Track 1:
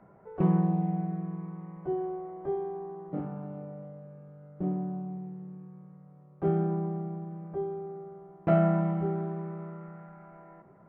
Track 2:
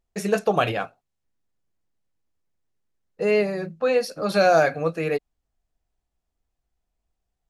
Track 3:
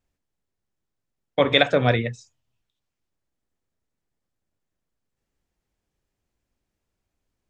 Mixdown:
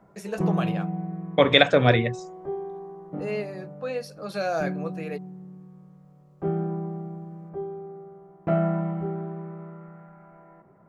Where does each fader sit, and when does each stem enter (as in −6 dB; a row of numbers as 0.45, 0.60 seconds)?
0.0, −10.0, +1.0 decibels; 0.00, 0.00, 0.00 seconds